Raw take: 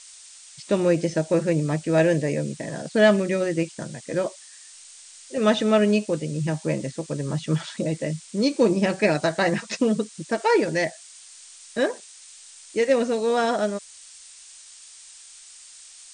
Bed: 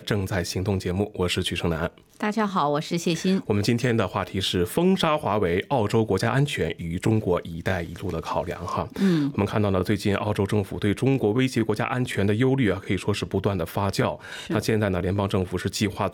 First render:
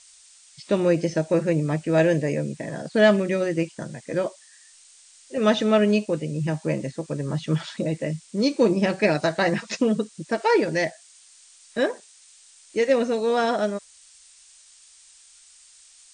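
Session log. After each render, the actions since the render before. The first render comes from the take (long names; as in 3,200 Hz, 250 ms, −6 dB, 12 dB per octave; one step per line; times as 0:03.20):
noise reduction from a noise print 6 dB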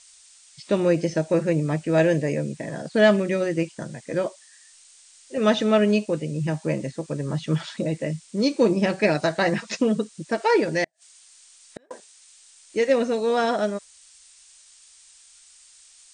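0:10.84–0:11.91: gate with flip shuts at −22 dBFS, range −39 dB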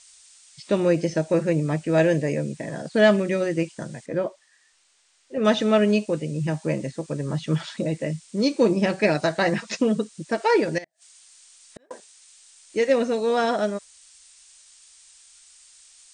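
0:04.06–0:05.45: low-pass filter 1,600 Hz 6 dB per octave
0:10.78–0:11.91: downward compressor 10 to 1, threshold −35 dBFS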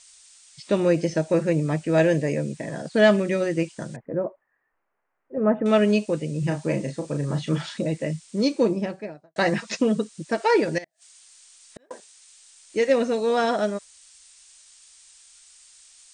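0:03.96–0:05.66: Gaussian smoothing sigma 6.2 samples
0:06.39–0:07.78: double-tracking delay 35 ms −6.5 dB
0:08.36–0:09.36: fade out and dull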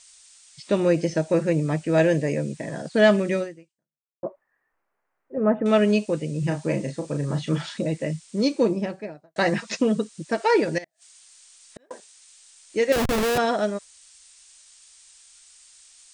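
0:03.39–0:04.23: fade out exponential
0:12.92–0:13.38: comparator with hysteresis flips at −25 dBFS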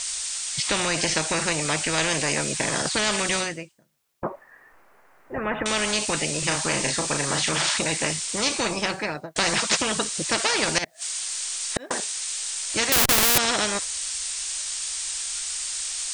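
in parallel at +3 dB: brickwall limiter −14.5 dBFS, peak gain reduction 9 dB
on the sum: every bin compressed towards the loudest bin 4 to 1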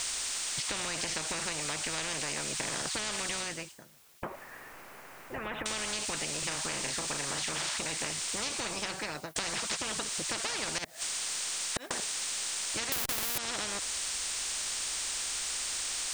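downward compressor, threshold −28 dBFS, peak gain reduction 15 dB
every bin compressed towards the loudest bin 2 to 1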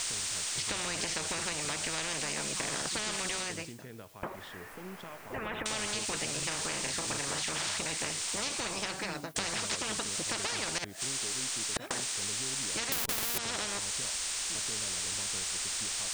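mix in bed −25.5 dB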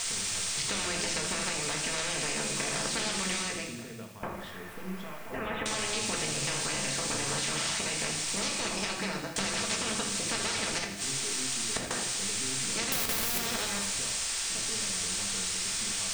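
on a send: feedback echo with a high-pass in the loop 81 ms, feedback 73%, level −11 dB
on the sum: rectangular room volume 400 cubic metres, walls furnished, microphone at 1.6 metres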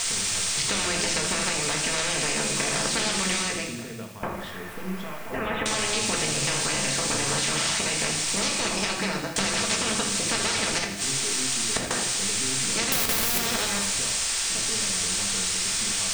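level +6 dB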